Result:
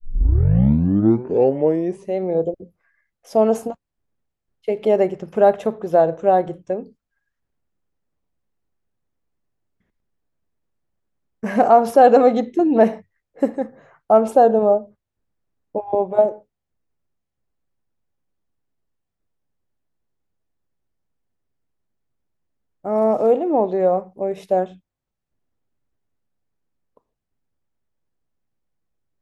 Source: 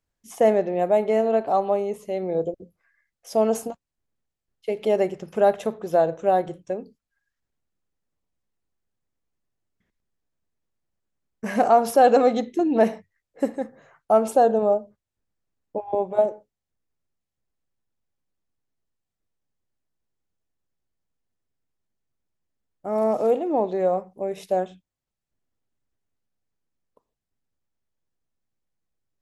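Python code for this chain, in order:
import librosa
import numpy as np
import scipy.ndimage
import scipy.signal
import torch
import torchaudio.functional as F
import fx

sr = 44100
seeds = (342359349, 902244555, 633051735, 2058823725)

y = fx.tape_start_head(x, sr, length_s=2.17)
y = fx.high_shelf(y, sr, hz=2700.0, db=-10.0)
y = y * librosa.db_to_amplitude(5.0)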